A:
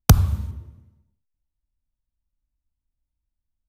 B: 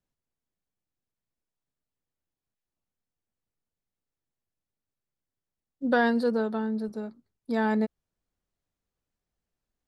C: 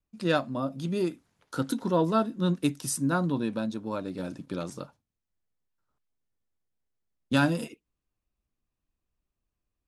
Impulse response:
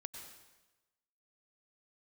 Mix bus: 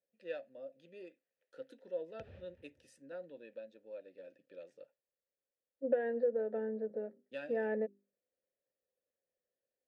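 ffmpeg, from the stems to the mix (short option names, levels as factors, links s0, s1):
-filter_complex "[0:a]lowpass=3900,adelay=2100,volume=0.376[s0];[1:a]lowpass=1300,bandreject=f=50:t=h:w=6,bandreject=f=100:t=h:w=6,bandreject=f=150:t=h:w=6,bandreject=f=200:t=h:w=6,bandreject=f=250:t=h:w=6,bandreject=f=300:t=h:w=6,bandreject=f=350:t=h:w=6,bandreject=f=400:t=h:w=6,volume=1.33[s1];[2:a]lowshelf=f=260:g=-7,volume=0.2,asplit=2[s2][s3];[s3]apad=whole_len=255335[s4];[s0][s4]sidechaincompress=threshold=0.00224:ratio=8:attack=33:release=107[s5];[s5][s1][s2]amix=inputs=3:normalize=0,acontrast=88,asplit=3[s6][s7][s8];[s6]bandpass=f=530:t=q:w=8,volume=1[s9];[s7]bandpass=f=1840:t=q:w=8,volume=0.501[s10];[s8]bandpass=f=2480:t=q:w=8,volume=0.355[s11];[s9][s10][s11]amix=inputs=3:normalize=0,acompressor=threshold=0.0224:ratio=2.5"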